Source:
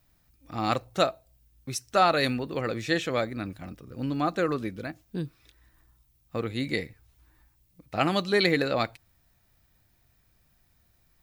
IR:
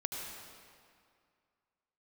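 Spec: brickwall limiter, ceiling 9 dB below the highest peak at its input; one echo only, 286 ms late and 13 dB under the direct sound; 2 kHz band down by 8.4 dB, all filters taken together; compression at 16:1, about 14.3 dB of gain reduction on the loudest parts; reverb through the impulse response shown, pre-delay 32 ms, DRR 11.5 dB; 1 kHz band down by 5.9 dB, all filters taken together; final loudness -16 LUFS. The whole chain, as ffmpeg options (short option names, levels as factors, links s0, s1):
-filter_complex "[0:a]equalizer=f=1000:t=o:g=-6.5,equalizer=f=2000:t=o:g=-8.5,acompressor=threshold=0.0178:ratio=16,alimiter=level_in=2.51:limit=0.0631:level=0:latency=1,volume=0.398,aecho=1:1:286:0.224,asplit=2[s0][s1];[1:a]atrim=start_sample=2205,adelay=32[s2];[s1][s2]afir=irnorm=-1:irlink=0,volume=0.211[s3];[s0][s3]amix=inputs=2:normalize=0,volume=21.1"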